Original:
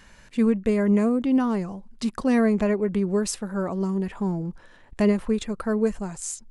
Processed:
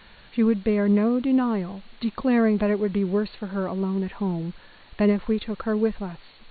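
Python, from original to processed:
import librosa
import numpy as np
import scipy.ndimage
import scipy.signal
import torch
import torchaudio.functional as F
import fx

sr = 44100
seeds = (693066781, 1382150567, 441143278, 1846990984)

y = fx.quant_dither(x, sr, seeds[0], bits=8, dither='triangular')
y = fx.brickwall_lowpass(y, sr, high_hz=4500.0)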